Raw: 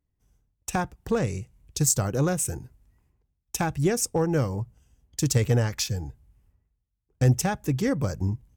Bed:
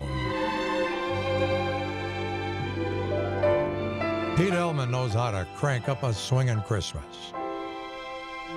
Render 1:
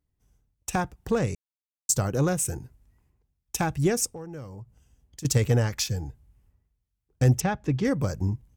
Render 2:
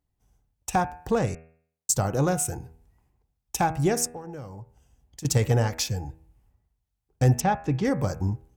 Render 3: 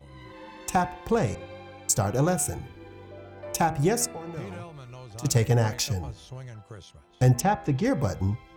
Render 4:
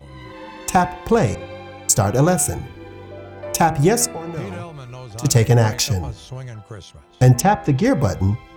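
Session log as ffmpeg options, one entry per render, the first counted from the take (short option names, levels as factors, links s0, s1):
-filter_complex "[0:a]asettb=1/sr,asplit=3[s0][s1][s2];[s0]atrim=end=4.064[s3];[s1]atrim=start=4.06:end=5.25,asetpts=PTS-STARTPTS,afade=t=in:d=0.004:c=qsin,afade=t=out:st=1.186:d=0.004:c=qsin,acompressor=threshold=0.00398:ratio=2:attack=3.2:release=140:knee=1:detection=peak[s4];[s2]atrim=start=5.246[s5];[s3][s4]acrossfade=d=0.004:c1=hsin:c2=qsin[s6];[s6][s5]acrossfade=d=0.004:c1=qsin:c2=hsin,asettb=1/sr,asplit=3[s7][s8][s9];[s7]atrim=end=7.404[s10];[s8]atrim=start=7.4:end=7.85,asetpts=PTS-STARTPTS,afade=t=in:d=0.004:c=qsin,afade=t=out:st=0.446:d=0.004:c=qsin,lowpass=4000[s11];[s9]atrim=start=7.846[s12];[s10][s11]acrossfade=d=0.004:c1=hsin:c2=qsin[s13];[s13][s12]acrossfade=d=0.004:c1=qsin:c2=hsin,asplit=3[s14][s15][s16];[s14]atrim=end=1.35,asetpts=PTS-STARTPTS,afade=t=out:st=1.346:d=0.004:c=hsin[s17];[s15]atrim=start=1.35:end=1.89,asetpts=PTS-STARTPTS,volume=0[s18];[s16]atrim=start=1.89,asetpts=PTS-STARTPTS,afade=t=in:d=0.004:c=hsin[s19];[s17][s18][s19]concat=n=3:v=0:a=1"
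-af "equalizer=f=790:t=o:w=0.63:g=7.5,bandreject=f=80.45:t=h:w=4,bandreject=f=160.9:t=h:w=4,bandreject=f=241.35:t=h:w=4,bandreject=f=321.8:t=h:w=4,bandreject=f=402.25:t=h:w=4,bandreject=f=482.7:t=h:w=4,bandreject=f=563.15:t=h:w=4,bandreject=f=643.6:t=h:w=4,bandreject=f=724.05:t=h:w=4,bandreject=f=804.5:t=h:w=4,bandreject=f=884.95:t=h:w=4,bandreject=f=965.4:t=h:w=4,bandreject=f=1045.85:t=h:w=4,bandreject=f=1126.3:t=h:w=4,bandreject=f=1206.75:t=h:w=4,bandreject=f=1287.2:t=h:w=4,bandreject=f=1367.65:t=h:w=4,bandreject=f=1448.1:t=h:w=4,bandreject=f=1528.55:t=h:w=4,bandreject=f=1609:t=h:w=4,bandreject=f=1689.45:t=h:w=4,bandreject=f=1769.9:t=h:w=4,bandreject=f=1850.35:t=h:w=4,bandreject=f=1930.8:t=h:w=4,bandreject=f=2011.25:t=h:w=4,bandreject=f=2091.7:t=h:w=4,bandreject=f=2172.15:t=h:w=4,bandreject=f=2252.6:t=h:w=4,bandreject=f=2333.05:t=h:w=4,bandreject=f=2413.5:t=h:w=4,bandreject=f=2493.95:t=h:w=4,bandreject=f=2574.4:t=h:w=4,bandreject=f=2654.85:t=h:w=4,bandreject=f=2735.3:t=h:w=4"
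-filter_complex "[1:a]volume=0.15[s0];[0:a][s0]amix=inputs=2:normalize=0"
-af "volume=2.51,alimiter=limit=0.708:level=0:latency=1"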